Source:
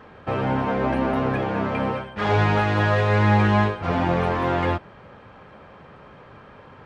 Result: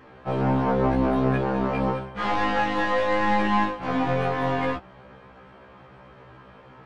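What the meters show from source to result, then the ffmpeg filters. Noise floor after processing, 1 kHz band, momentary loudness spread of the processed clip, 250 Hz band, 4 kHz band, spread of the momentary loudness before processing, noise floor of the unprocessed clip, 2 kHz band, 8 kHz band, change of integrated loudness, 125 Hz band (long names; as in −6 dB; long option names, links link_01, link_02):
−49 dBFS, −0.5 dB, 5 LU, −1.0 dB, −2.0 dB, 8 LU, −47 dBFS, −2.5 dB, can't be measured, −2.0 dB, −7.0 dB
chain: -af "aeval=exprs='0.447*(cos(1*acos(clip(val(0)/0.447,-1,1)))-cos(1*PI/2))+0.0447*(cos(4*acos(clip(val(0)/0.447,-1,1)))-cos(4*PI/2))':channel_layout=same,afftfilt=real='re*1.73*eq(mod(b,3),0)':imag='im*1.73*eq(mod(b,3),0)':win_size=2048:overlap=0.75"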